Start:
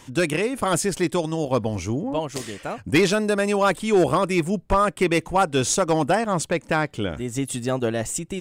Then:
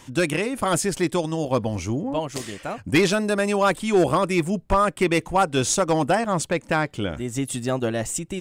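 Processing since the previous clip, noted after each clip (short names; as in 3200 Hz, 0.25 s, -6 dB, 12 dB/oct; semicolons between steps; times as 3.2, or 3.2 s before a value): notch 440 Hz, Q 12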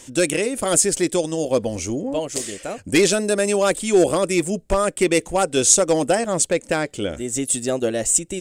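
ten-band EQ 125 Hz -7 dB, 500 Hz +6 dB, 1000 Hz -8 dB, 8000 Hz +11 dB; gain +1 dB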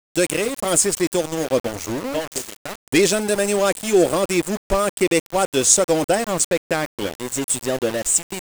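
sample gate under -24.5 dBFS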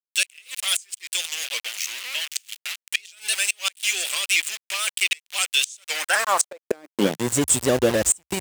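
high-pass sweep 2700 Hz -> 67 Hz, 5.85–7.54; flipped gate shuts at -8 dBFS, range -30 dB; shaped vibrato saw up 3.9 Hz, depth 100 cents; gain +2.5 dB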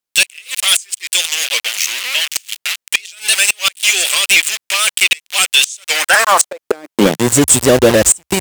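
sine folder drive 8 dB, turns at -2.5 dBFS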